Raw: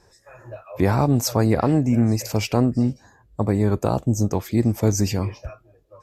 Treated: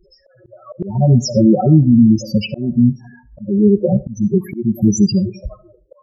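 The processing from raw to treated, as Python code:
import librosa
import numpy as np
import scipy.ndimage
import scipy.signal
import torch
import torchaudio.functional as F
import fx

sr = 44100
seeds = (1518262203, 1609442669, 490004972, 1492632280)

p1 = x + 0.66 * np.pad(x, (int(5.4 * sr / 1000.0), 0))[:len(x)]
p2 = fx.spec_topn(p1, sr, count=4)
p3 = fx.level_steps(p2, sr, step_db=12)
p4 = p2 + (p3 * librosa.db_to_amplitude(0.0))
p5 = fx.rev_freeverb(p4, sr, rt60_s=0.44, hf_ratio=0.35, predelay_ms=30, drr_db=18.0)
p6 = fx.auto_swell(p5, sr, attack_ms=287.0)
y = p6 * librosa.db_to_amplitude(6.0)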